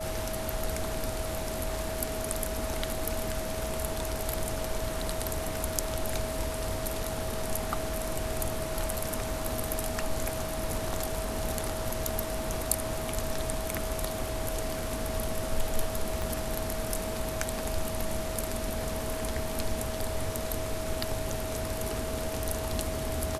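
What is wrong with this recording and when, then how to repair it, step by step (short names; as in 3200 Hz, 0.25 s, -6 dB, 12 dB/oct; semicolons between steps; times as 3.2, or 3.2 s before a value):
tone 640 Hz -36 dBFS
16.22 pop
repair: de-click; notch 640 Hz, Q 30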